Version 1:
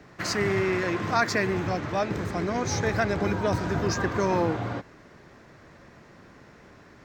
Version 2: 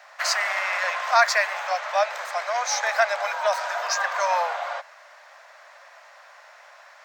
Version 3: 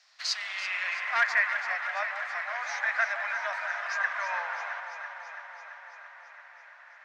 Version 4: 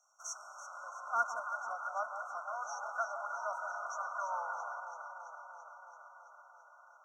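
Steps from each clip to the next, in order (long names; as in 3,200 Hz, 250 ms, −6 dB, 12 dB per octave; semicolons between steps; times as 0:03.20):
Butterworth high-pass 580 Hz 72 dB per octave; level +6.5 dB
wavefolder on the positive side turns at −12.5 dBFS; delay that swaps between a low-pass and a high-pass 167 ms, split 1,000 Hz, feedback 84%, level −7 dB; band-pass filter sweep 5,000 Hz → 1,800 Hz, 0:00.03–0:01.25; level −1 dB
linear-phase brick-wall band-stop 1,500–5,500 Hz; level −3 dB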